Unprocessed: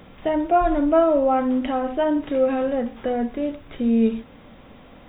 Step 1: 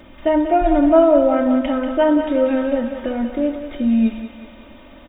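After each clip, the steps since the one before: comb 3.3 ms, depth 95%; thinning echo 0.188 s, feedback 68%, high-pass 400 Hz, level -8 dB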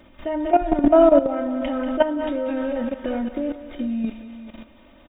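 echo 0.406 s -15.5 dB; level quantiser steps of 13 dB; gain +1.5 dB

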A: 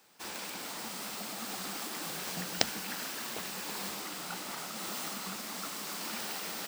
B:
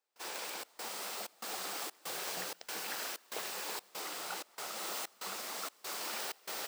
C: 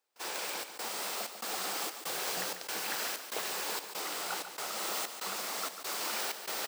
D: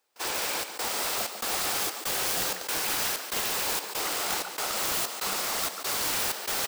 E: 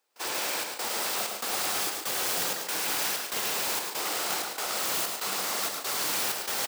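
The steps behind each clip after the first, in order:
HPF 75 Hz; resonant low shelf 310 Hz -10.5 dB, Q 1.5; step gate ".xxx.xxx" 95 bpm -24 dB; gain -1 dB
echo 0.144 s -9 dB; gain +4 dB
wrapped overs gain 29 dB; gain +7.5 dB
HPF 130 Hz 12 dB/oct; on a send: echo 0.107 s -5.5 dB; on the sum: gain -1.5 dB

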